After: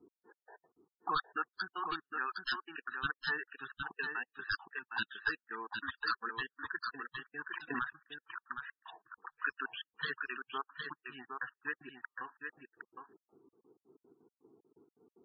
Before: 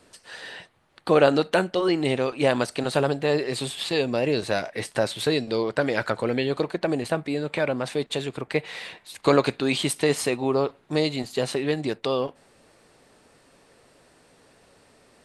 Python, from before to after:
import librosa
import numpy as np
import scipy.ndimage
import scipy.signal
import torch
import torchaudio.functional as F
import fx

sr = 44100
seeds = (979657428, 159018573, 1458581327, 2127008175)

y = fx.crossing_spikes(x, sr, level_db=-24.0, at=(5.04, 5.47))
y = scipy.signal.sosfilt(scipy.signal.butter(4, 2800.0, 'lowpass', fs=sr, output='sos'), y)
y = fx.auto_wah(y, sr, base_hz=350.0, top_hz=1700.0, q=4.9, full_db=-27.5, direction='up')
y = (np.mod(10.0 ** (28.0 / 20.0) * y + 1.0, 2.0) - 1.0) / 10.0 ** (28.0 / 20.0)
y = fx.fixed_phaser(y, sr, hz=2100.0, stages=6)
y = fx.step_gate(y, sr, bpm=188, pattern='x..x..x.x.x..x', floor_db=-60.0, edge_ms=4.5)
y = fx.spec_topn(y, sr, count=32)
y = y + 10.0 ** (-5.5 / 20.0) * np.pad(y, (int(762 * sr / 1000.0), 0))[:len(y)]
y = fx.pre_swell(y, sr, db_per_s=31.0, at=(7.49, 8.0))
y = y * 10.0 ** (9.5 / 20.0)